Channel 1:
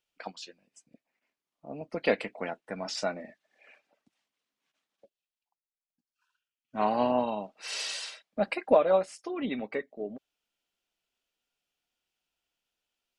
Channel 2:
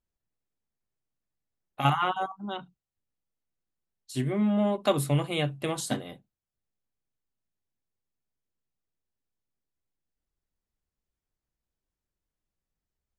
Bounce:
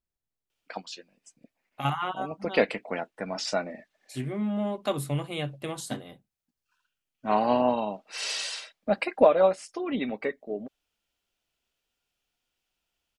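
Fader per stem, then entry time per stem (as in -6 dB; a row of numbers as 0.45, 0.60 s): +3.0, -4.0 dB; 0.50, 0.00 s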